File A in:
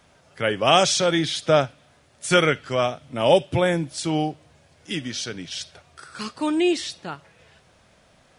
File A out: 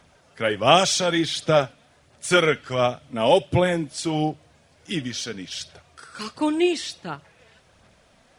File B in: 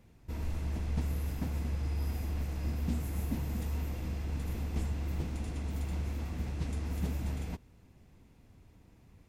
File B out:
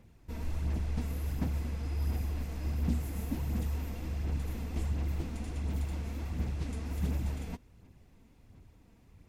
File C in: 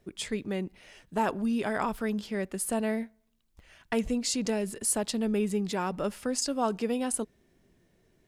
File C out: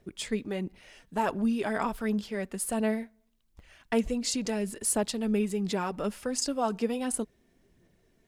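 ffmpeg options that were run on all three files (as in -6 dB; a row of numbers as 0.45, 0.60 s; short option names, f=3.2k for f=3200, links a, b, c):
-af "aphaser=in_gain=1:out_gain=1:delay=4.5:decay=0.35:speed=1.4:type=sinusoidal,volume=-1dB"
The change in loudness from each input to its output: 0.0, +0.5, 0.0 LU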